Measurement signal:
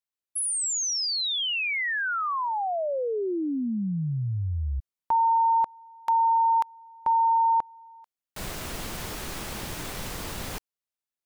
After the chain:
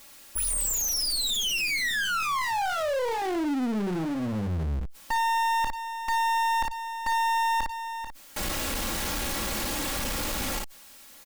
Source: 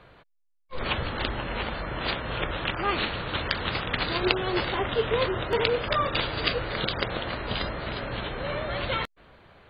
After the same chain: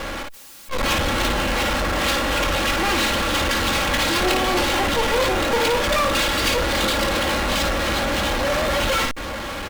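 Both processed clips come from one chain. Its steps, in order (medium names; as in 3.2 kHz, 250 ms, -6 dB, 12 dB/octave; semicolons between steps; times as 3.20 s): comb filter that takes the minimum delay 3.6 ms; on a send: early reflections 24 ms -14 dB, 55 ms -9 dB; on the sum: power-law waveshaper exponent 0.35; trim -6 dB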